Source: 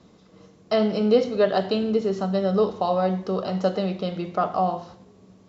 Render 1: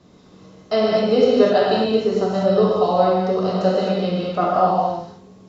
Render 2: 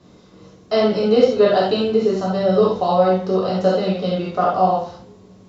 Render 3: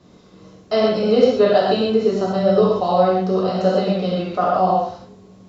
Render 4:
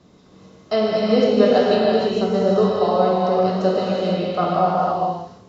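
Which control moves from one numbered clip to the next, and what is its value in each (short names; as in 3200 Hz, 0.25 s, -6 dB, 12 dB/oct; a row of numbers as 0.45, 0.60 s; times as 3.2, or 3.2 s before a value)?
non-linear reverb, gate: 0.28, 0.11, 0.16, 0.52 s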